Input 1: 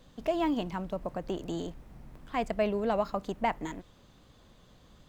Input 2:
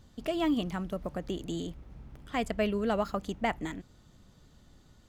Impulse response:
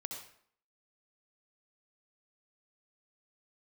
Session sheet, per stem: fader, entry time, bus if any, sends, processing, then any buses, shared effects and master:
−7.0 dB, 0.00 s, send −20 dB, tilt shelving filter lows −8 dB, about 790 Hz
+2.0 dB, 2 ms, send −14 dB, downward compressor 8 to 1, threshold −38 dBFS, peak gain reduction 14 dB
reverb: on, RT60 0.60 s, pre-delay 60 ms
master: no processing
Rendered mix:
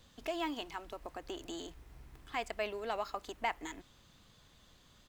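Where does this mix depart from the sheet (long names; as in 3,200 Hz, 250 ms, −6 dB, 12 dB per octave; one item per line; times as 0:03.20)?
stem 2 +2.0 dB → −8.5 dB
reverb return −9.0 dB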